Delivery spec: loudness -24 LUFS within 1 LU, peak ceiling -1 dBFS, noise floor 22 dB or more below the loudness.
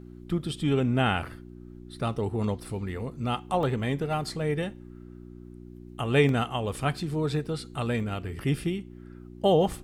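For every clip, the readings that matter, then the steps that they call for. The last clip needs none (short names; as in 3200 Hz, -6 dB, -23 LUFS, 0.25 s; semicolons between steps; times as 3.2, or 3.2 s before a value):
dropouts 3; longest dropout 1.5 ms; hum 60 Hz; harmonics up to 360 Hz; hum level -43 dBFS; loudness -28.5 LUFS; peak -9.5 dBFS; loudness target -24.0 LUFS
-> interpolate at 3.63/6.29/8, 1.5 ms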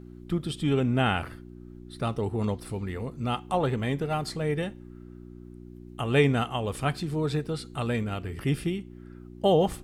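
dropouts 0; hum 60 Hz; harmonics up to 360 Hz; hum level -43 dBFS
-> de-hum 60 Hz, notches 6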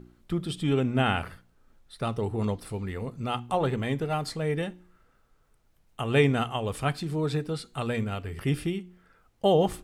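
hum none; loudness -29.0 LUFS; peak -9.5 dBFS; loudness target -24.0 LUFS
-> gain +5 dB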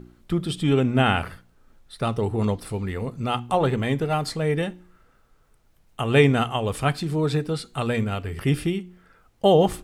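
loudness -24.0 LUFS; peak -4.5 dBFS; noise floor -60 dBFS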